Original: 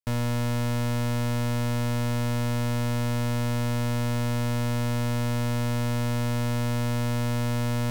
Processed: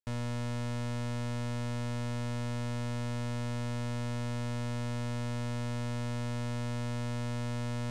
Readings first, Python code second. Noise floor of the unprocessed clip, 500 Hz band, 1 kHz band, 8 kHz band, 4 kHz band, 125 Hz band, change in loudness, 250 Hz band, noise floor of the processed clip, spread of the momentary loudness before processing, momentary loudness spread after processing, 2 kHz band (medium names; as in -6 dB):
-26 dBFS, -8.5 dB, -8.5 dB, -9.0 dB, -8.5 dB, -8.5 dB, -8.5 dB, -8.5 dB, -34 dBFS, 0 LU, 0 LU, -8.5 dB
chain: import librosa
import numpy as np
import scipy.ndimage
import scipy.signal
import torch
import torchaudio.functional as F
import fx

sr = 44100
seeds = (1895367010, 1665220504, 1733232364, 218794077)

y = scipy.signal.sosfilt(scipy.signal.butter(4, 9900.0, 'lowpass', fs=sr, output='sos'), x)
y = y * librosa.db_to_amplitude(-8.5)